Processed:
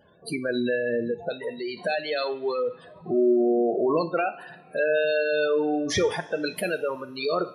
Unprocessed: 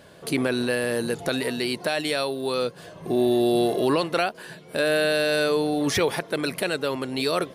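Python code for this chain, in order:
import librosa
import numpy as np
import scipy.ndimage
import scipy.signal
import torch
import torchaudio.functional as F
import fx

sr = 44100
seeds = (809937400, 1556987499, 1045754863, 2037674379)

y = fx.spec_gate(x, sr, threshold_db=-15, keep='strong')
y = fx.rev_double_slope(y, sr, seeds[0], early_s=0.44, late_s=2.9, knee_db=-18, drr_db=9.0)
y = fx.noise_reduce_blind(y, sr, reduce_db=9)
y = fx.graphic_eq_15(y, sr, hz=(100, 250, 1600, 4000, 10000), db=(-6, -7, -9, -6, -8), at=(1.11, 1.77))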